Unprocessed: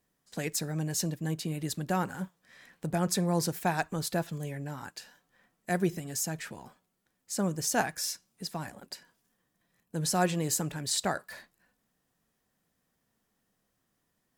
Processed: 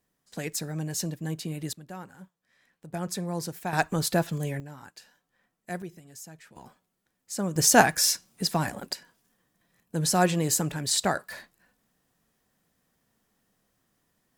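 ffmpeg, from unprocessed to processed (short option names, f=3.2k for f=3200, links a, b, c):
-af "asetnsamples=n=441:p=0,asendcmd='1.73 volume volume -11.5dB;2.94 volume volume -4dB;3.73 volume volume 6dB;4.6 volume volume -5dB;5.82 volume volume -12dB;6.56 volume volume 0dB;7.56 volume volume 10.5dB;8.93 volume volume 4.5dB',volume=0dB"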